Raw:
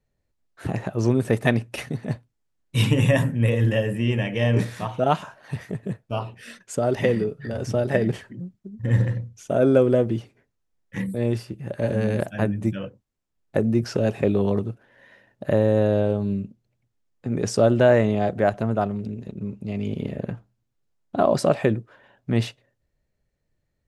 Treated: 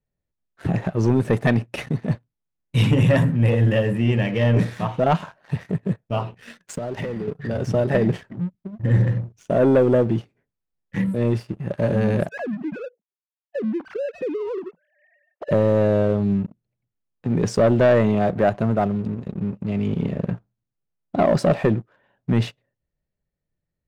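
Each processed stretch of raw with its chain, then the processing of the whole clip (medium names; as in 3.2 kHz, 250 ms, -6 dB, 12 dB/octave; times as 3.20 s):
6.58–7.28 s: waveshaping leveller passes 2 + compression 16:1, threshold -29 dBFS
12.29–15.51 s: formants replaced by sine waves + compression 3:1, threshold -30 dBFS
whole clip: peaking EQ 170 Hz +6.5 dB 0.29 oct; waveshaping leveller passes 2; treble shelf 5.2 kHz -10.5 dB; trim -4 dB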